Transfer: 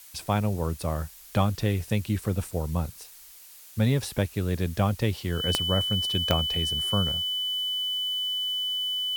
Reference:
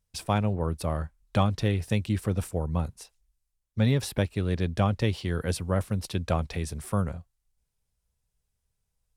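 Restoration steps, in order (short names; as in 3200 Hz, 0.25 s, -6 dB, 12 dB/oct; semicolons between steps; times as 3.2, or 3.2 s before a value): de-click; notch 3000 Hz, Q 30; noise print and reduce 30 dB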